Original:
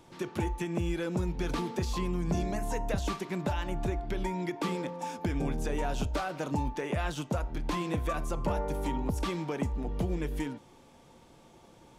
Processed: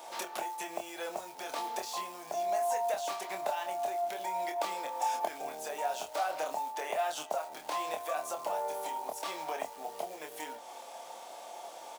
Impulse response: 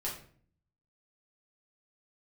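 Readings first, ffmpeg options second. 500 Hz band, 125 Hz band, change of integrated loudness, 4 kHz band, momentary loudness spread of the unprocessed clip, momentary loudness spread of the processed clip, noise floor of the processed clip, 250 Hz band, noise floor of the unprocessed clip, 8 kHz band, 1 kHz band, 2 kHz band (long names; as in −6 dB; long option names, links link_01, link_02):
−0.5 dB, below −30 dB, −3.0 dB, +0.5 dB, 2 LU, 10 LU, −48 dBFS, −18.5 dB, −57 dBFS, +3.5 dB, +4.5 dB, −2.0 dB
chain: -filter_complex "[0:a]acrusher=bits=6:mode=log:mix=0:aa=0.000001,acompressor=threshold=-41dB:ratio=6,highpass=frequency=690:width_type=q:width=4.3,highshelf=frequency=3700:gain=9,asplit=2[link_01][link_02];[link_02]adelay=26,volume=-5dB[link_03];[link_01][link_03]amix=inputs=2:normalize=0,volume=5dB"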